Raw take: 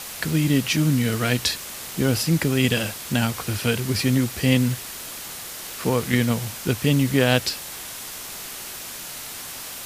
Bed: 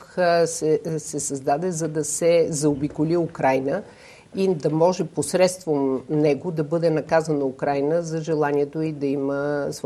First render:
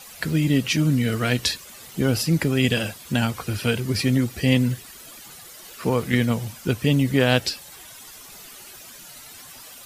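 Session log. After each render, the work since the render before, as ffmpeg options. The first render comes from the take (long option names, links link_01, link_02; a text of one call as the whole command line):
ffmpeg -i in.wav -af "afftdn=noise_reduction=12:noise_floor=-36" out.wav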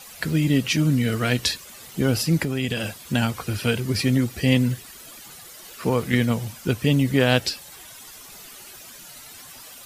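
ffmpeg -i in.wav -filter_complex "[0:a]asettb=1/sr,asplit=3[link_01][link_02][link_03];[link_01]atrim=end=2.434[link_04];[link_02]atrim=start=2.43:end=2.99,asetpts=PTS-STARTPTS,afade=type=in:duration=0.004:curve=qsin,afade=type=out:start_time=0.556:duration=0.004:curve=qsin,acompressor=threshold=-22dB:ratio=2.5:attack=3.2:release=140:knee=1:detection=peak[link_05];[link_03]atrim=start=2.986[link_06];[link_04][link_05]acrossfade=duration=0.004:curve1=hsin:curve2=qsin[link_07];[link_07][link_06]acrossfade=duration=0.004:curve1=qsin:curve2=hsin" out.wav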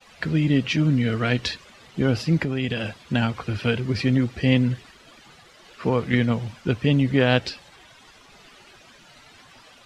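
ffmpeg -i in.wav -af "agate=range=-33dB:threshold=-40dB:ratio=3:detection=peak,lowpass=3600" out.wav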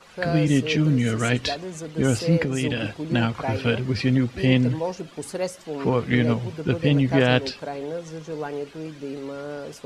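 ffmpeg -i in.wav -i bed.wav -filter_complex "[1:a]volume=-9.5dB[link_01];[0:a][link_01]amix=inputs=2:normalize=0" out.wav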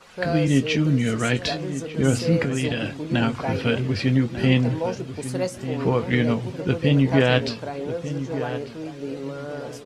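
ffmpeg -i in.wav -filter_complex "[0:a]asplit=2[link_01][link_02];[link_02]adelay=22,volume=-11.5dB[link_03];[link_01][link_03]amix=inputs=2:normalize=0,asplit=2[link_04][link_05];[link_05]adelay=1195,lowpass=frequency=1600:poles=1,volume=-11dB,asplit=2[link_06][link_07];[link_07]adelay=1195,lowpass=frequency=1600:poles=1,volume=0.3,asplit=2[link_08][link_09];[link_09]adelay=1195,lowpass=frequency=1600:poles=1,volume=0.3[link_10];[link_04][link_06][link_08][link_10]amix=inputs=4:normalize=0" out.wav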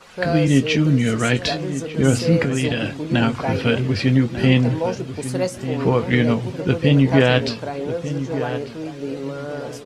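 ffmpeg -i in.wav -af "volume=3.5dB,alimiter=limit=-2dB:level=0:latency=1" out.wav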